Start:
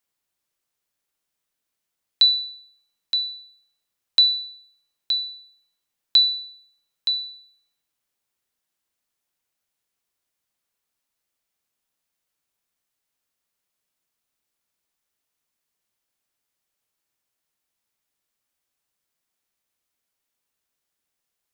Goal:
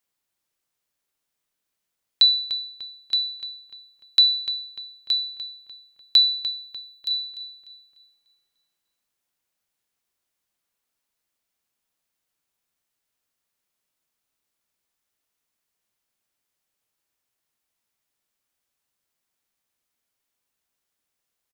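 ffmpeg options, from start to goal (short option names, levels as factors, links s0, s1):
-filter_complex "[0:a]asettb=1/sr,asplit=3[s0][s1][s2];[s0]atrim=end=6.504[s3];[s1]atrim=start=6.5:end=7.11,asetpts=PTS-STARTPTS,afade=t=in:d=0.004:c=qsin,afade=t=out:st=0.606:d=0.004:c=qsin,aderivative[s4];[s2]atrim=start=7.106[s5];[s3][s4]acrossfade=d=0.004:c1=hsin:c2=qsin[s6];[s6][s5]acrossfade=d=0.004:c1=qsin:c2=hsin,asplit=2[s7][s8];[s8]adelay=297,lowpass=f=3300:p=1,volume=0.335,asplit=2[s9][s10];[s10]adelay=297,lowpass=f=3300:p=1,volume=0.53,asplit=2[s11][s12];[s12]adelay=297,lowpass=f=3300:p=1,volume=0.53,asplit=2[s13][s14];[s14]adelay=297,lowpass=f=3300:p=1,volume=0.53,asplit=2[s15][s16];[s16]adelay=297,lowpass=f=3300:p=1,volume=0.53,asplit=2[s17][s18];[s18]adelay=297,lowpass=f=3300:p=1,volume=0.53[s19];[s7][s9][s11][s13][s15][s17][s19]amix=inputs=7:normalize=0"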